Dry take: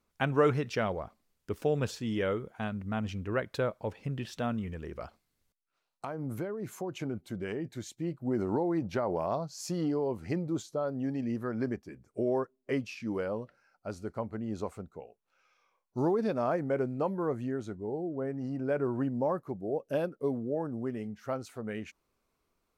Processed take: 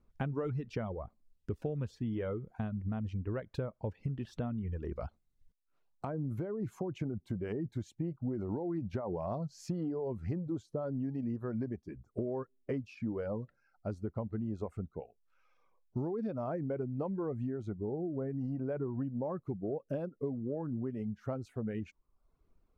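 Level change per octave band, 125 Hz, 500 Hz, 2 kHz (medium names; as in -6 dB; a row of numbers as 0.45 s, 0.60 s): 0.0 dB, -6.5 dB, -12.0 dB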